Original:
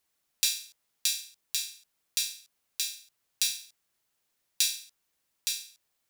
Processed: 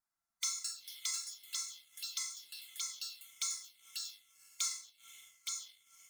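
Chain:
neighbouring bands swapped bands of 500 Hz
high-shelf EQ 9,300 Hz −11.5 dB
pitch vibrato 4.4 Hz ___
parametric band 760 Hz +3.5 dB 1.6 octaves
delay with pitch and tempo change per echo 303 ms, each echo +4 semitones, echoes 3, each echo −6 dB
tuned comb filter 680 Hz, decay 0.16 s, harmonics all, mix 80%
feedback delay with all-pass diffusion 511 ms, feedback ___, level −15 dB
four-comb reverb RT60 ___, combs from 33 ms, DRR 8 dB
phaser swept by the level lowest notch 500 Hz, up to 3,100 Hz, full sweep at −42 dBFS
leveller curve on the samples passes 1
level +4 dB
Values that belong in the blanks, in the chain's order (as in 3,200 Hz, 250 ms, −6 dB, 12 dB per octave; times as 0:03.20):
27 cents, 47%, 0.35 s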